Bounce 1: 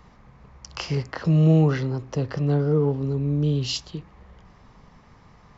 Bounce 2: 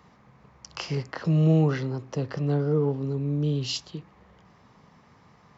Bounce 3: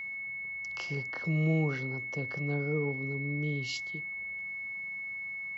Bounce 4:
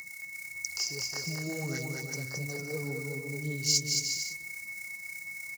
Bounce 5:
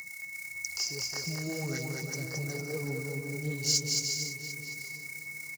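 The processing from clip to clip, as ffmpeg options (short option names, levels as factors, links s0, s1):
-af "highpass=110,volume=0.75"
-af "aeval=exprs='val(0)+0.0398*sin(2*PI*2200*n/s)':c=same,volume=0.398"
-af "aphaser=in_gain=1:out_gain=1:delay=3:decay=0.52:speed=1.7:type=sinusoidal,aecho=1:1:220|363|456|516.4|555.6:0.631|0.398|0.251|0.158|0.1,aexciter=amount=12.8:drive=9.3:freq=5000,volume=0.422"
-filter_complex "[0:a]asplit=2[s0][s1];[s1]asoftclip=type=tanh:threshold=0.0398,volume=0.562[s2];[s0][s2]amix=inputs=2:normalize=0,asplit=2[s3][s4];[s4]adelay=747,lowpass=f=2300:p=1,volume=0.355,asplit=2[s5][s6];[s6]adelay=747,lowpass=f=2300:p=1,volume=0.26,asplit=2[s7][s8];[s8]adelay=747,lowpass=f=2300:p=1,volume=0.26[s9];[s3][s5][s7][s9]amix=inputs=4:normalize=0,volume=0.708"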